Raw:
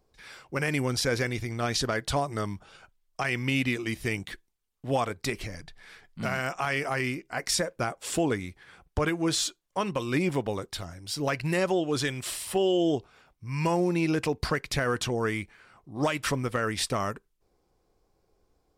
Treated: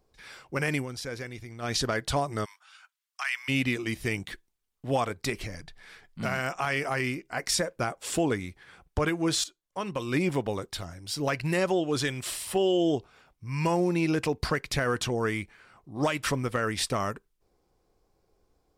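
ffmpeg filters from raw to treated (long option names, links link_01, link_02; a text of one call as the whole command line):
ffmpeg -i in.wav -filter_complex "[0:a]asplit=3[link_01][link_02][link_03];[link_01]afade=type=out:start_time=2.44:duration=0.02[link_04];[link_02]highpass=frequency=1100:width=0.5412,highpass=frequency=1100:width=1.3066,afade=type=in:start_time=2.44:duration=0.02,afade=type=out:start_time=3.48:duration=0.02[link_05];[link_03]afade=type=in:start_time=3.48:duration=0.02[link_06];[link_04][link_05][link_06]amix=inputs=3:normalize=0,asplit=4[link_07][link_08][link_09][link_10];[link_07]atrim=end=0.86,asetpts=PTS-STARTPTS,afade=type=out:start_time=0.71:duration=0.15:curve=qsin:silence=0.334965[link_11];[link_08]atrim=start=0.86:end=1.61,asetpts=PTS-STARTPTS,volume=-9.5dB[link_12];[link_09]atrim=start=1.61:end=9.44,asetpts=PTS-STARTPTS,afade=type=in:duration=0.15:curve=qsin:silence=0.334965,afade=type=out:start_time=7.826:duration=0.004:curve=hsin:silence=0.223872[link_13];[link_10]atrim=start=9.44,asetpts=PTS-STARTPTS,afade=type=in:duration=0.75:silence=0.223872[link_14];[link_11][link_12][link_13][link_14]concat=n=4:v=0:a=1" out.wav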